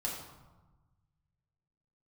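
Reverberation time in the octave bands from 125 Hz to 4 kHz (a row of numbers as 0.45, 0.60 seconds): 2.3, 1.6, 1.1, 1.2, 0.85, 0.65 seconds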